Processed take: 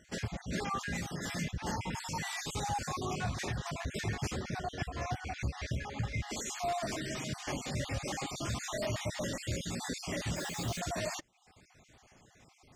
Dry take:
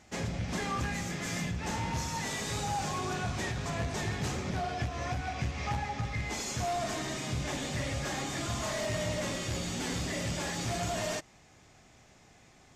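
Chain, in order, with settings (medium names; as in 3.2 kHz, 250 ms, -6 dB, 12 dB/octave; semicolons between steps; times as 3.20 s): random holes in the spectrogram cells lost 37%; reverb removal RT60 0.52 s; 10.36–10.80 s: word length cut 8-bit, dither none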